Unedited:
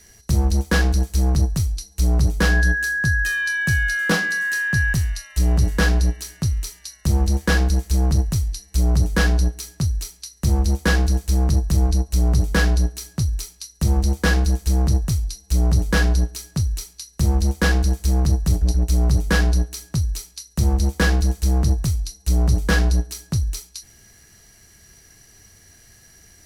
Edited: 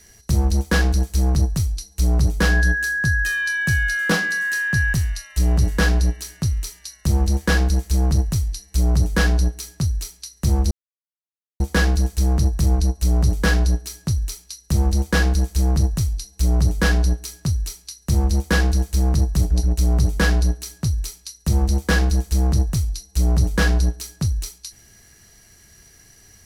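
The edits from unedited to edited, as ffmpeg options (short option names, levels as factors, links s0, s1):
-filter_complex "[0:a]asplit=2[s0][s1];[s0]atrim=end=10.71,asetpts=PTS-STARTPTS,afade=t=out:st=10.706:d=0.004:c=hsin,apad=pad_dur=0.89[s2];[s1]atrim=start=10.71,asetpts=PTS-STARTPTS,afade=t=in:d=0.004:c=hsin[s3];[s2][s3]concat=n=2:v=0:a=1"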